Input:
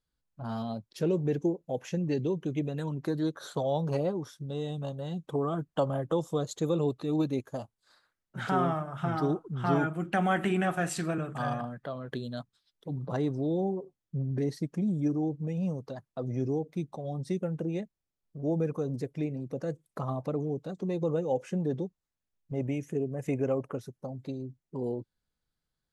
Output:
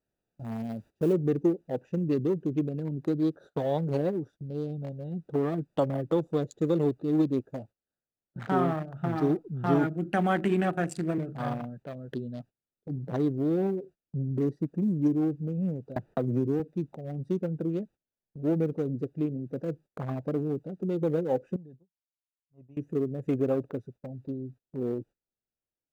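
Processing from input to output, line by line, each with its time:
1.13 s: noise floor step -51 dB -64 dB
15.96–16.60 s: three bands compressed up and down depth 100%
21.56–22.77 s: amplifier tone stack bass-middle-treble 5-5-5
whole clip: local Wiener filter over 41 samples; dynamic bell 320 Hz, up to +5 dB, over -40 dBFS, Q 1.1; gate -48 dBFS, range -20 dB

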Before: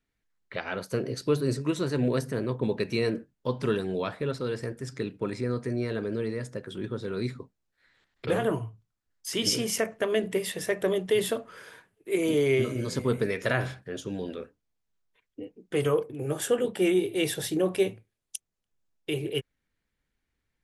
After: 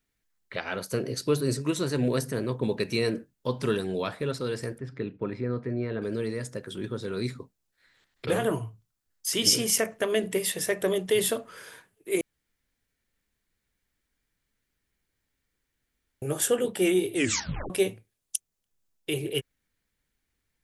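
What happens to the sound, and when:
4.78–6.02 s: distance through air 400 m
12.21–16.22 s: room tone
17.14 s: tape stop 0.56 s
whole clip: treble shelf 5.1 kHz +9.5 dB

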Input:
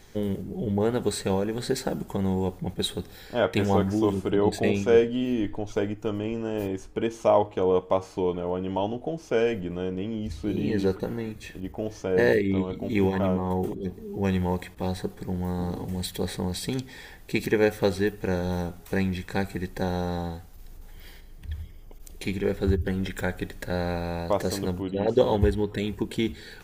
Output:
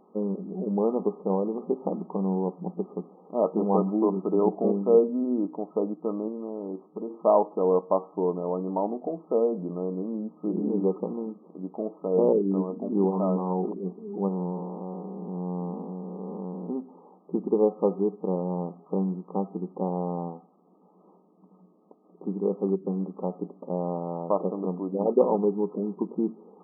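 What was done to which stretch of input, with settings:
6.28–7.10 s: compression, threshold -29 dBFS
14.28–16.70 s: spectral blur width 345 ms
23.41–23.84 s: low-pass 1.2 kHz
whole clip: FFT band-pass 170–1300 Hz

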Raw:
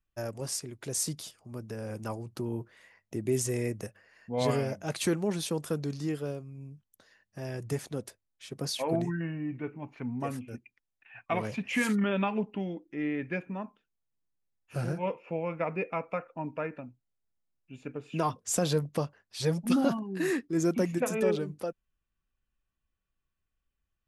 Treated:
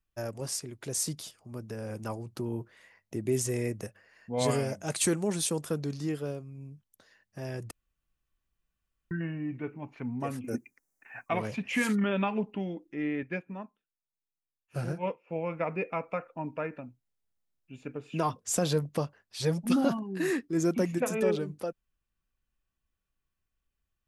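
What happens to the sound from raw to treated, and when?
4.36–5.60 s: peaking EQ 8.3 kHz +10.5 dB 0.84 oct
7.71–9.11 s: room tone
10.44–11.29 s: FFT filter 100 Hz 0 dB, 270 Hz +12 dB, 2.1 kHz +6 dB, 3.3 kHz -11 dB, 6.1 kHz +14 dB
13.23–15.36 s: upward expansion, over -53 dBFS

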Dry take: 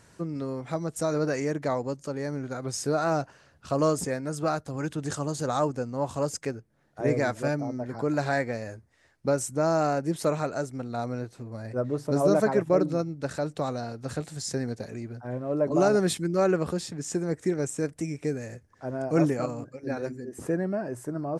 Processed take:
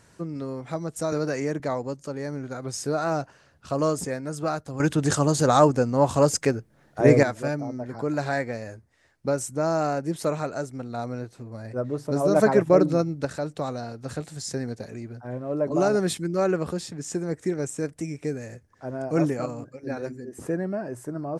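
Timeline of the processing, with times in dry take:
1.12–1.60 s: three bands compressed up and down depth 70%
4.80–7.23 s: gain +9 dB
12.36–13.25 s: gain +5 dB

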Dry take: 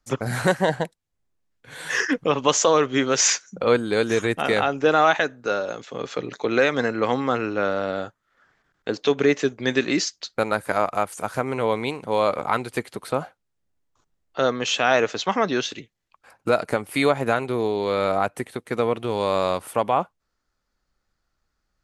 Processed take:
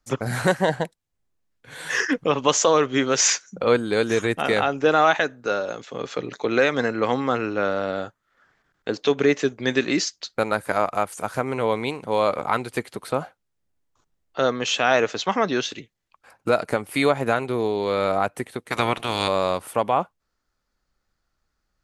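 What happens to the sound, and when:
18.70–19.27 s: spectral peaks clipped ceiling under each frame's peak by 22 dB

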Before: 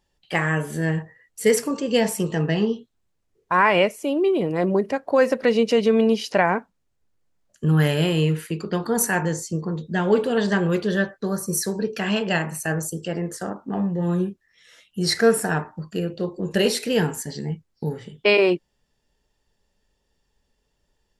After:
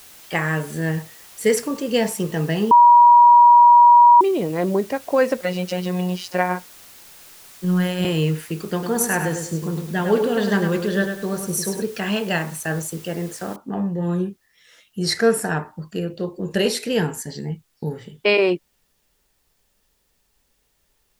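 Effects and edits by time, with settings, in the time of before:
2.71–4.21 s: bleep 959 Hz -6.5 dBFS
5.41–8.05 s: robot voice 181 Hz
8.72–11.82 s: bit-crushed delay 102 ms, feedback 35%, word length 8-bit, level -6.5 dB
13.56 s: noise floor step -45 dB -69 dB

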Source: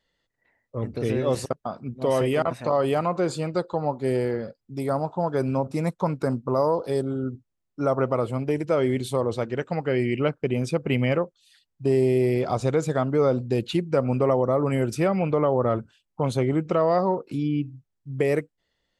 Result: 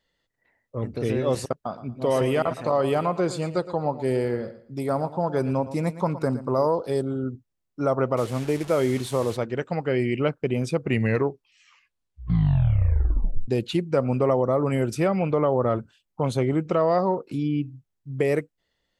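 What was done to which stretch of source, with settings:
1.66–6.67 s: feedback delay 115 ms, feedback 25%, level -14 dB
8.17–9.37 s: one-bit delta coder 64 kbps, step -33 dBFS
10.74 s: tape stop 2.74 s

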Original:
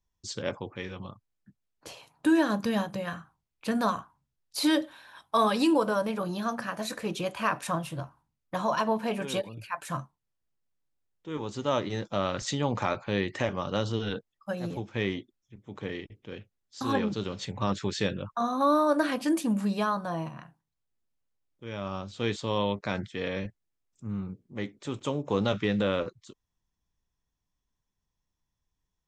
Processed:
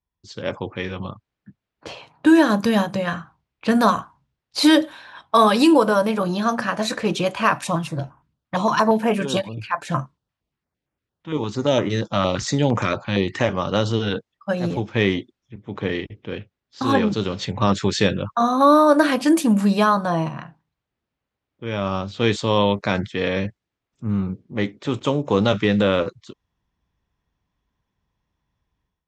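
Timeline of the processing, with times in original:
7.53–13.41 s: step-sequenced notch 8.7 Hz 420–4200 Hz
whole clip: level-controlled noise filter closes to 3 kHz, open at -24.5 dBFS; high-pass 44 Hz; level rider gain up to 13 dB; trim -1.5 dB

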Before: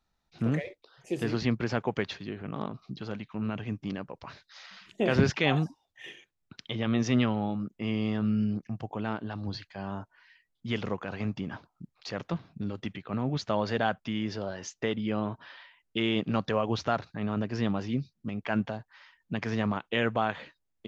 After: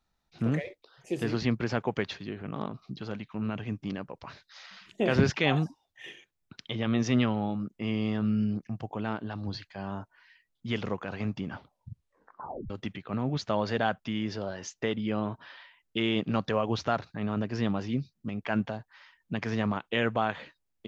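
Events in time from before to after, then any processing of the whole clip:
11.48 s: tape stop 1.22 s

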